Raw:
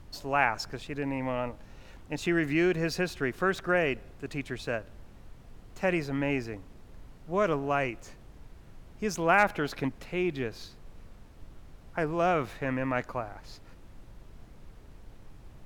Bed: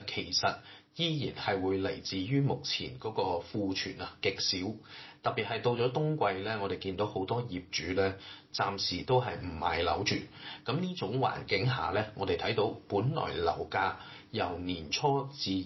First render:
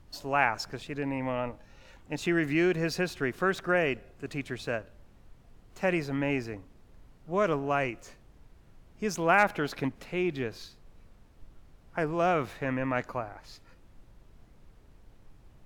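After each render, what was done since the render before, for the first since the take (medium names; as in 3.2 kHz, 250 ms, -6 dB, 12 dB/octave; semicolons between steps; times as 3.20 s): noise print and reduce 6 dB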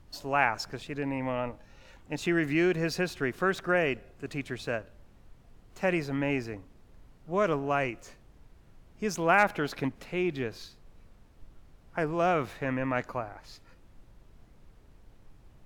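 no audible change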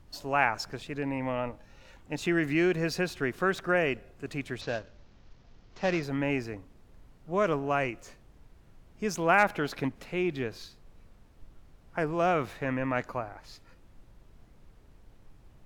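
4.61–6.03 s: CVSD coder 32 kbps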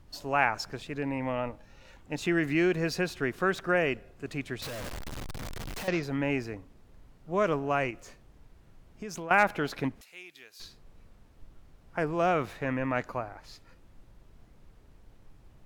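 4.62–5.88 s: one-bit comparator; 7.90–9.31 s: compression, threshold -35 dBFS; 10.01–10.60 s: differentiator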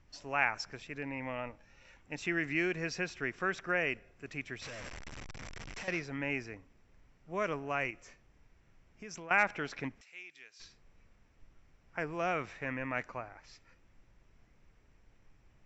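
rippled Chebyshev low-pass 7.7 kHz, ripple 9 dB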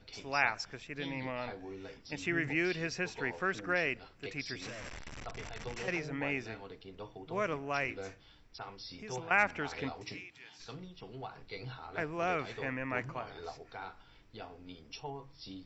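add bed -14.5 dB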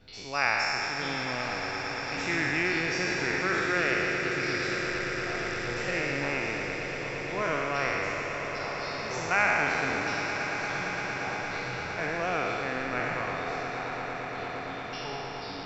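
spectral sustain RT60 2.81 s; echo with a slow build-up 115 ms, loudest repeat 8, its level -14 dB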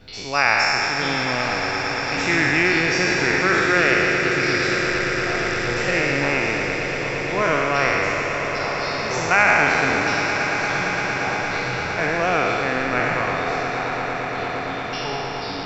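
trim +9.5 dB; peak limiter -3 dBFS, peak gain reduction 2.5 dB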